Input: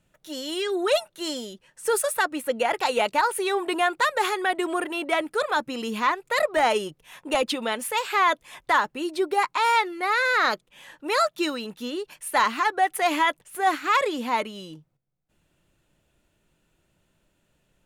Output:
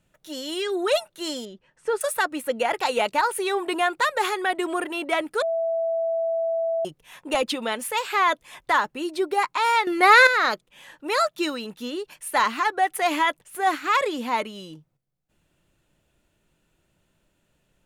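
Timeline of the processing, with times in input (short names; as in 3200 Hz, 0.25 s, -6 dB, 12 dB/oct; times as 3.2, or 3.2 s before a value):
1.45–2.01 tape spacing loss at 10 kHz 21 dB
5.42–6.85 bleep 660 Hz -21.5 dBFS
9.87–10.27 gain +10 dB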